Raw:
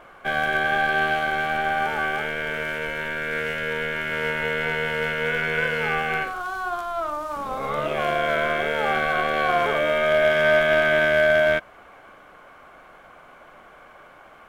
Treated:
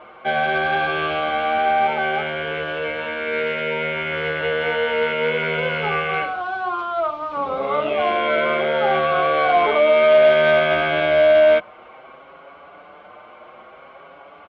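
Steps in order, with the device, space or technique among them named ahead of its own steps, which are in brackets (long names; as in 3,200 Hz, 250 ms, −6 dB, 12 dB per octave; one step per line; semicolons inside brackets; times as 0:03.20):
barber-pole flanger into a guitar amplifier (barber-pole flanger 6.1 ms +0.6 Hz; soft clipping −16 dBFS, distortion −19 dB; loudspeaker in its box 98–3,600 Hz, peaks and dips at 130 Hz −8 dB, 250 Hz −4 dB, 560 Hz +3 dB, 1,700 Hz −9 dB)
level +8.5 dB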